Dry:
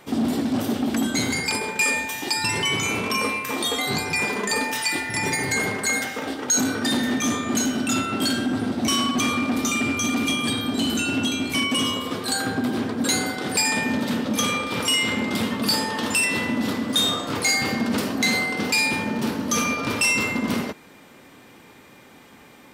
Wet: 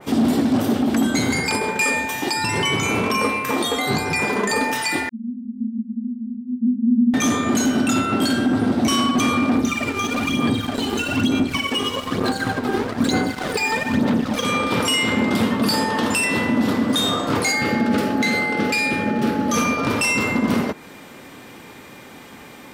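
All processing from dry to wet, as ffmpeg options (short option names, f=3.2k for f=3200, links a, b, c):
-filter_complex "[0:a]asettb=1/sr,asplit=3[a][b][c];[a]atrim=end=5.094[d];[b]atrim=start=5.09:end=7.14,asetpts=PTS-STARTPTS,afade=t=in:d=0.004:c=qsin,afade=t=out:st=2.046:d=0.004:c=qsin,acontrast=81,asoftclip=type=hard:threshold=-14.5dB,asuperpass=centerf=230:order=20:qfactor=5.1[e];[c]atrim=start=7.136[f];[d][e]acrossfade=d=0.004:c1=hsin:c2=qsin[g];[g][f]acrossfade=d=0.004:c1=qsin:c2=hsin,asettb=1/sr,asplit=3[h][i][j];[h]atrim=end=9.554[k];[i]atrim=start=9.55:end=14.45,asetpts=PTS-STARTPTS,afade=t=in:d=0.004:c=qsin,afade=t=out:st=4.896:d=0.004:c=qsin,acrossover=split=6100[l][m];[m]acompressor=threshold=-43dB:ratio=4:attack=1:release=60[n];[l][n]amix=inputs=2:normalize=0,aphaser=in_gain=1:out_gain=1:delay=2.5:decay=0.64:speed=1.1:type=sinusoidal,aeval=exprs='sgn(val(0))*max(abs(val(0))-0.0237,0)':c=same[o];[j]atrim=start=14.446[p];[k][o]acrossfade=d=0.004:c1=hsin:c2=qsin[q];[q][p]acrossfade=d=0.004:c1=qsin:c2=hsin,asettb=1/sr,asplit=3[r][s][t];[r]atrim=end=17.524[u];[s]atrim=start=17.52:end=19.54,asetpts=PTS-STARTPTS,afade=t=in:d=0.004:c=qsin,afade=t=out:st=2.016:d=0.004:c=qsin,asuperstop=centerf=890:order=4:qfactor=1.9,bass=f=250:g=-3,treble=f=4k:g=-5,aeval=exprs='val(0)+0.02*sin(2*PI*850*n/s)':c=same[v];[t]atrim=start=19.536[w];[u][v]acrossfade=d=0.004:c1=hsin:c2=qsin[x];[x][w]acrossfade=d=0.004:c1=qsin:c2=hsin,alimiter=limit=-17dB:level=0:latency=1:release=214,adynamicequalizer=threshold=0.00891:dfrequency=2000:dqfactor=0.7:tfrequency=2000:tqfactor=0.7:attack=5:release=100:ratio=0.375:range=3:mode=cutabove:tftype=highshelf,volume=7.5dB"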